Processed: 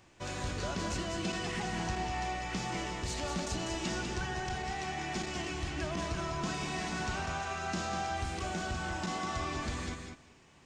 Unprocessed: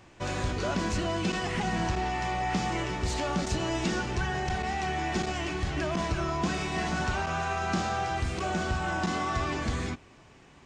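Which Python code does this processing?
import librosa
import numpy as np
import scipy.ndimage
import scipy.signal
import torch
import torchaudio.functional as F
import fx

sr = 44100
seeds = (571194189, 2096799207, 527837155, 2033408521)

p1 = fx.high_shelf(x, sr, hz=3700.0, db=6.5)
p2 = p1 + fx.echo_feedback(p1, sr, ms=197, feedback_pct=15, wet_db=-5.5, dry=0)
y = p2 * 10.0 ** (-7.5 / 20.0)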